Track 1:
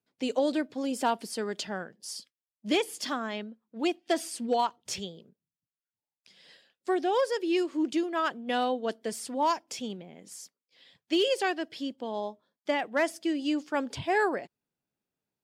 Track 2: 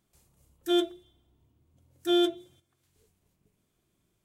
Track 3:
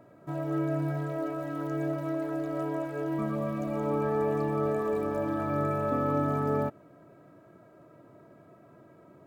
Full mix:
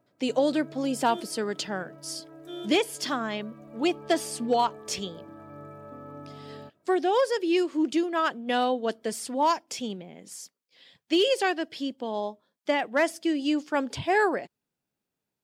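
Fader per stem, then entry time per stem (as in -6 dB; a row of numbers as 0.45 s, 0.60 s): +3.0 dB, -15.5 dB, -15.5 dB; 0.00 s, 0.40 s, 0.00 s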